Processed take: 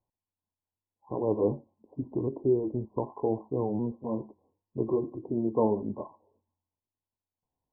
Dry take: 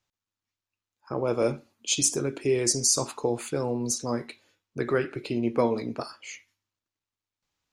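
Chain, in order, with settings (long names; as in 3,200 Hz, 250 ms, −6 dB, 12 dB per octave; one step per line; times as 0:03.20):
pitch shifter swept by a sawtooth −2.5 semitones, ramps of 758 ms
linear-phase brick-wall low-pass 1,100 Hz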